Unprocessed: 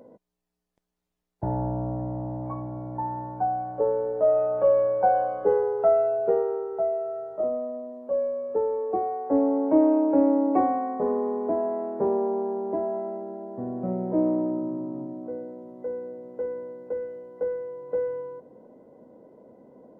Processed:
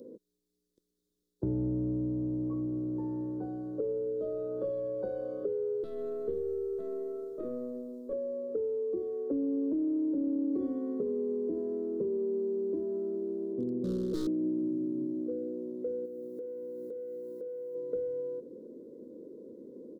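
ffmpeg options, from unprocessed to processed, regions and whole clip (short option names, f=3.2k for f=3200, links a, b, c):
-filter_complex "[0:a]asettb=1/sr,asplit=3[a][b][c];[a]atrim=end=5.834[d];[b]atrim=start=5.83:end=8.13,asetpts=PTS-STARTPTS,afade=t=in:d=0.004:c=qsin,afade=t=out:st=2.296:d=0.004:c=qsin,bass=f=250:g=-1,treble=f=4k:g=9,acrossover=split=250|3000[e][f][g];[f]acompressor=threshold=-26dB:ratio=2.5:attack=3.2:release=140:knee=2.83:detection=peak[h];[e][h][g]amix=inputs=3:normalize=0,aeval=exprs='(tanh(12.6*val(0)+0.45)-tanh(0.45))/12.6':c=same[i];[c]atrim=start=8.126[j];[d][i]acrossfade=d=0.004:c1=hsin:c2=qsin[k];[k][j]acrossfade=d=0.004:c1=qsin:c2=hsin,asettb=1/sr,asplit=3[l][m][n];[l]atrim=end=13.534[o];[m]atrim=start=13.53:end=14.27,asetpts=PTS-STARTPTS,afade=t=in:d=0.004:c=qsin,afade=t=out:st=0.736:d=0.004:c=qsin,lowpass=f=1k:w=0.5412,lowpass=f=1k:w=1.3066,aeval=exprs='0.0631*(abs(mod(val(0)/0.0631+3,4)-2)-1)':c=same[p];[n]atrim=start=14.266[q];[o][p]acrossfade=d=0.004:c1=hsin:c2=qsin[r];[r][q]acrossfade=d=0.004:c1=qsin:c2=hsin,asettb=1/sr,asplit=3[s][t][u];[s]atrim=end=16.054[v];[t]atrim=start=16.05:end=17.75,asetpts=PTS-STARTPTS,afade=t=in:d=0.004:c=qsin,afade=t=out:st=1.696:d=0.004:c=qsin,aemphasis=mode=production:type=50fm,acompressor=threshold=-40dB:ratio=10:attack=3.2:release=140:knee=1:detection=peak[w];[u]atrim=start=17.746[x];[v][w]acrossfade=d=0.004:c1=hsin:c2=qsin[y];[y][x]acrossfade=d=0.004:c1=qsin:c2=hsin,firequalizer=gain_entry='entry(130,0);entry(350,14);entry(500,7);entry(720,-21);entry(1200,-8);entry(2400,-16);entry(3600,7)':delay=0.05:min_phase=1,alimiter=limit=-11.5dB:level=0:latency=1:release=40,acrossover=split=180|3000[z][aa][ab];[aa]acompressor=threshold=-28dB:ratio=6[ac];[z][ac][ab]amix=inputs=3:normalize=0,volume=-4.5dB"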